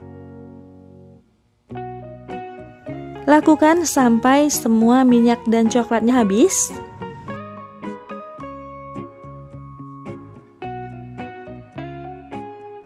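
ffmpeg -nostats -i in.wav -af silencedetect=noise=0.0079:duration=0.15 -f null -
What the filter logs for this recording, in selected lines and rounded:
silence_start: 1.17
silence_end: 1.70 | silence_duration: 0.53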